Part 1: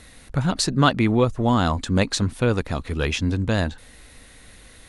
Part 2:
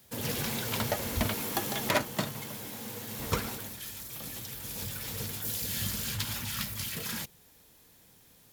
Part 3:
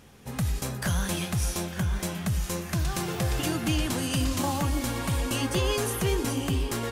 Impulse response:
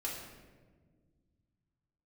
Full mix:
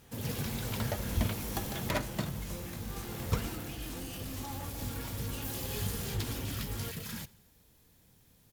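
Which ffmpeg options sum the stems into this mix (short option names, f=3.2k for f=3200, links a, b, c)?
-filter_complex "[1:a]lowshelf=f=200:g=11.5,volume=-7dB,asplit=2[a][b];[b]volume=-22.5dB[c];[2:a]asoftclip=type=tanh:threshold=-29.5dB,flanger=delay=20:depth=3.3:speed=2.9,volume=-5dB,asplit=2[d][e];[e]volume=-7dB[f];[d]alimiter=level_in=18dB:limit=-24dB:level=0:latency=1,volume=-18dB,volume=0dB[g];[3:a]atrim=start_sample=2205[h];[f][h]afir=irnorm=-1:irlink=0[i];[c]aecho=0:1:87|174|261|348|435|522|609:1|0.51|0.26|0.133|0.0677|0.0345|0.0176[j];[a][g][i][j]amix=inputs=4:normalize=0"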